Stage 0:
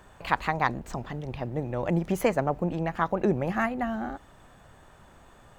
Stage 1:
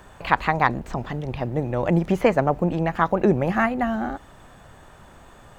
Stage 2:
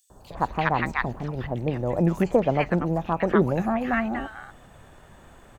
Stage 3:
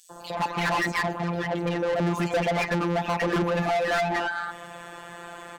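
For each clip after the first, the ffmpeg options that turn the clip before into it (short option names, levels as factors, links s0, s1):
-filter_complex "[0:a]acrossover=split=4200[s0][s1];[s1]acompressor=threshold=0.00178:ratio=4:attack=1:release=60[s2];[s0][s2]amix=inputs=2:normalize=0,volume=2"
-filter_complex "[0:a]acrossover=split=1100|4800[s0][s1][s2];[s0]adelay=100[s3];[s1]adelay=340[s4];[s3][s4][s2]amix=inputs=3:normalize=0,volume=0.841"
-filter_complex "[0:a]afftfilt=real='hypot(re,im)*cos(PI*b)':imag='0':win_size=1024:overlap=0.75,asplit=2[s0][s1];[s1]highpass=f=720:p=1,volume=44.7,asoftclip=type=tanh:threshold=0.398[s2];[s0][s2]amix=inputs=2:normalize=0,lowpass=f=5900:p=1,volume=0.501,volume=0.376"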